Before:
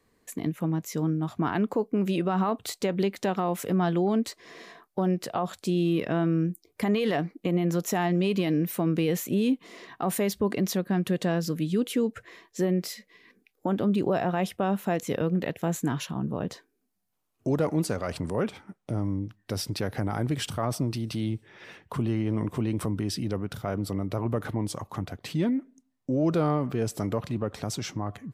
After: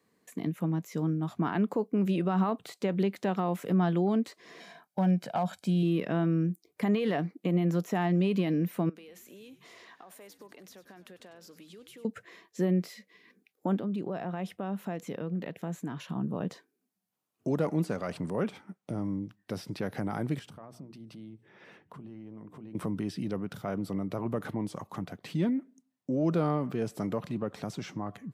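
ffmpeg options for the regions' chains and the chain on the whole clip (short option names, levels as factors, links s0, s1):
-filter_complex "[0:a]asettb=1/sr,asplit=3[s0][s1][s2];[s0]atrim=end=4.604[s3];[s1]atrim=start=4.6:end=5.83,asetpts=PTS-STARTPTS,afade=t=in:d=0.004:c=qsin,afade=t=out:st=1.226:d=0.004:c=qsin,aecho=1:1:1.3:0.62,atrim=end_sample=54243,asoftclip=type=hard:threshold=0.106[s4];[s2]atrim=start=5.826[s5];[s3][s4]acrossfade=d=0.004:c1=hsin:c2=qsin[s6];[s6][s5]acrossfade=d=0.004:c1=qsin:c2=hsin,asettb=1/sr,asplit=3[s7][s8][s9];[s7]atrim=end=8.894[s10];[s8]atrim=start=8.89:end=12.05,asetpts=PTS-STARTPTS,afade=t=in:d=0.004:c=qsin,afade=t=out:st=3.156:d=0.004:c=qsin,highpass=490,acompressor=threshold=0.00562:ratio=6:attack=3.2:release=140:knee=1:detection=peak,asplit=7[s11][s12][s13][s14][s15][s16][s17];[s12]adelay=97,afreqshift=-120,volume=0.168[s18];[s13]adelay=194,afreqshift=-240,volume=0.102[s19];[s14]adelay=291,afreqshift=-360,volume=0.0624[s20];[s15]adelay=388,afreqshift=-480,volume=0.038[s21];[s16]adelay=485,afreqshift=-600,volume=0.0232[s22];[s17]adelay=582,afreqshift=-720,volume=0.0141[s23];[s11][s18][s19][s20][s21][s22][s23]amix=inputs=7:normalize=0,atrim=end_sample=139356[s24];[s9]atrim=start=12.046[s25];[s10][s24]acrossfade=d=0.004:c1=hsin:c2=qsin[s26];[s26][s25]acrossfade=d=0.004:c1=qsin:c2=hsin,asettb=1/sr,asplit=3[s27][s28][s29];[s27]atrim=end=13.764[s30];[s28]atrim=start=13.76:end=16.09,asetpts=PTS-STARTPTS,afade=t=in:d=0.004:c=qsin,afade=t=out:st=2.326:d=0.004:c=qsin,acompressor=threshold=0.0224:ratio=2:attack=3.2:release=140:knee=1:detection=peak,highshelf=f=4400:g=-6[s31];[s29]atrim=start=16.086[s32];[s30][s31]acrossfade=d=0.004:c1=hsin:c2=qsin[s33];[s33][s32]acrossfade=d=0.004:c1=qsin:c2=hsin,asettb=1/sr,asplit=3[s34][s35][s36];[s34]atrim=end=20.394[s37];[s35]atrim=start=20.39:end=22.75,asetpts=PTS-STARTPTS,afade=t=in:d=0.004:c=qsin,afade=t=out:st=2.356:d=0.004:c=qsin,highshelf=f=2300:g=-10,acompressor=threshold=0.00562:ratio=2.5:attack=3.2:release=140:knee=1:detection=peak,bandreject=f=60:t=h:w=6,bandreject=f=120:t=h:w=6,bandreject=f=180:t=h:w=6,bandreject=f=240:t=h:w=6,bandreject=f=300:t=h:w=6,bandreject=f=360:t=h:w=6,bandreject=f=420:t=h:w=6[s38];[s36]atrim=start=22.746[s39];[s37][s38]acrossfade=d=0.004:c1=hsin:c2=qsin[s40];[s40][s39]acrossfade=d=0.004:c1=qsin:c2=hsin,highpass=140,acrossover=split=3000[s41][s42];[s42]acompressor=threshold=0.00631:ratio=4:attack=1:release=60[s43];[s41][s43]amix=inputs=2:normalize=0,equalizer=f=180:w=2.7:g=5,volume=0.668"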